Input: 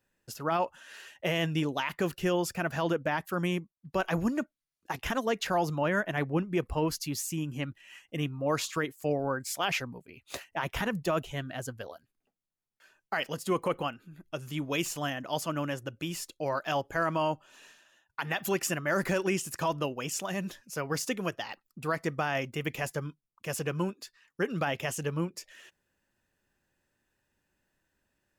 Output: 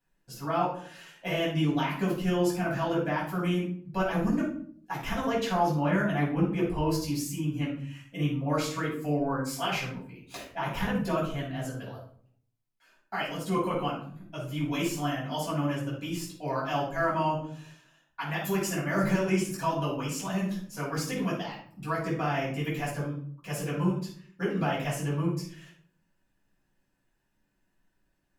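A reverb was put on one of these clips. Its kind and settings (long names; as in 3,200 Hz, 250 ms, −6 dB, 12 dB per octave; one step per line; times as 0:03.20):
rectangular room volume 580 cubic metres, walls furnished, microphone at 8.1 metres
level −10.5 dB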